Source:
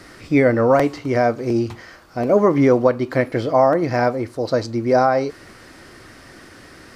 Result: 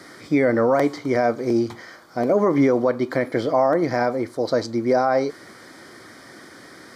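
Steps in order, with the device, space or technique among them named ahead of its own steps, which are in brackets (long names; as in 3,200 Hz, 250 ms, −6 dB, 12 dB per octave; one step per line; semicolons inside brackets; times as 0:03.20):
PA system with an anti-feedback notch (high-pass filter 160 Hz 12 dB per octave; Butterworth band-reject 2,700 Hz, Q 5; brickwall limiter −9.5 dBFS, peak gain reduction 6.5 dB)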